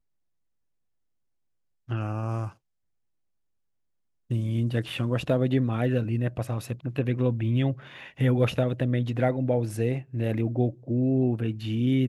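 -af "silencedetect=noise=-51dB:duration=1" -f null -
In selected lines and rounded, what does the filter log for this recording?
silence_start: 0.00
silence_end: 1.88 | silence_duration: 1.88
silence_start: 2.53
silence_end: 4.30 | silence_duration: 1.77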